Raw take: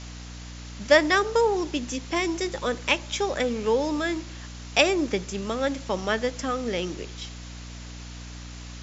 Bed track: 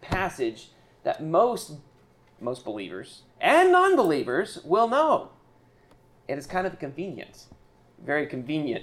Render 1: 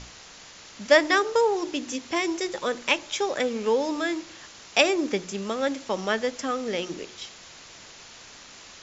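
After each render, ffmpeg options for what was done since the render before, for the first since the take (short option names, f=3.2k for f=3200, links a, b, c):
-af "bandreject=f=60:t=h:w=6,bandreject=f=120:t=h:w=6,bandreject=f=180:t=h:w=6,bandreject=f=240:t=h:w=6,bandreject=f=300:t=h:w=6,bandreject=f=360:t=h:w=6"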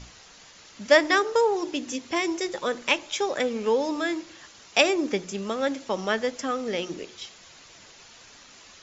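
-af "afftdn=nr=6:nf=-47"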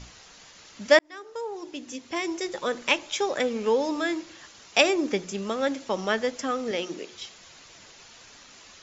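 -filter_complex "[0:a]asettb=1/sr,asplit=3[a][b][c];[a]atrim=end=6.714[d];[b]atrim=start=6.71:end=7.12,asetpts=PTS-STARTPTS,afade=t=in:d=0.004:c=qsin,afade=t=out:st=0.406:d=0.004:c=qsin,highpass=200[e];[c]atrim=start=7.116[f];[d][e]acrossfade=d=0.004:c1=hsin:c2=qsin[g];[g][f]acrossfade=d=0.004:c1=qsin:c2=hsin,asplit=2[h][i];[h]atrim=end=0.99,asetpts=PTS-STARTPTS,afade=t=out:st=0.986:d=0.004:c=hsin[j];[i]atrim=start=0.99,asetpts=PTS-STARTPTS,afade=t=in:d=1.82[k];[j][k]concat=n=2:v=0:a=1"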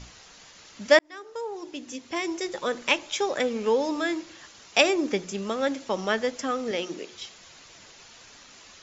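-af anull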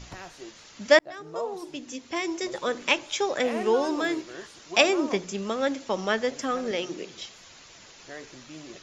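-filter_complex "[1:a]volume=-16dB[a];[0:a][a]amix=inputs=2:normalize=0"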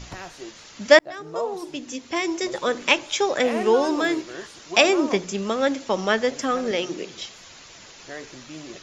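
-af "volume=4.5dB,alimiter=limit=-1dB:level=0:latency=1"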